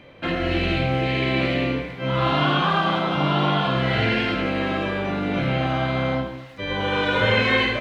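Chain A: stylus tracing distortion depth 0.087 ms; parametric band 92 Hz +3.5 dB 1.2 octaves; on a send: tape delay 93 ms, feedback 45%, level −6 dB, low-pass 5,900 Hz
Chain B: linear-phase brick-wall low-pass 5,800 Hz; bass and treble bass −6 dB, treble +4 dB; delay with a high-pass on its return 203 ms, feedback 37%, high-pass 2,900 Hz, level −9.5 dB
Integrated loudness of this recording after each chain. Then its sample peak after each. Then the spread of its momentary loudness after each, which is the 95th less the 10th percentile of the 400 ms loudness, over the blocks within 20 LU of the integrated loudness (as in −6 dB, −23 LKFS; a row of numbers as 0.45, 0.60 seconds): −21.0, −22.5 LKFS; −6.0, −7.0 dBFS; 7, 8 LU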